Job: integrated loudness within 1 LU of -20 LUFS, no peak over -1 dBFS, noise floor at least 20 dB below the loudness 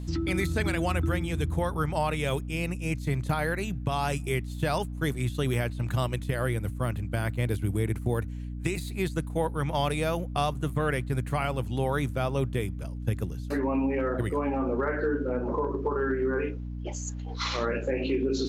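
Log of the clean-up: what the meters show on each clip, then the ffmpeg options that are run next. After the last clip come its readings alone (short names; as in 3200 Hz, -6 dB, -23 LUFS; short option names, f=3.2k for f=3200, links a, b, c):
hum 60 Hz; harmonics up to 300 Hz; hum level -33 dBFS; loudness -29.5 LUFS; peak -14.0 dBFS; loudness target -20.0 LUFS
-> -af "bandreject=f=60:t=h:w=4,bandreject=f=120:t=h:w=4,bandreject=f=180:t=h:w=4,bandreject=f=240:t=h:w=4,bandreject=f=300:t=h:w=4"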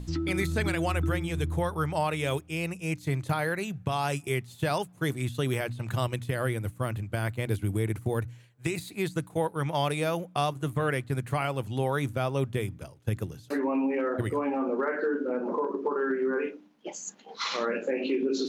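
hum none; loudness -30.0 LUFS; peak -15.0 dBFS; loudness target -20.0 LUFS
-> -af "volume=10dB"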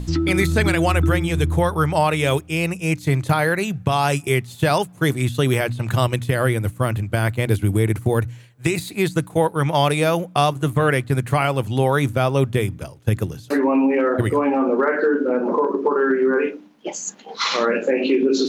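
loudness -20.0 LUFS; peak -5.0 dBFS; noise floor -44 dBFS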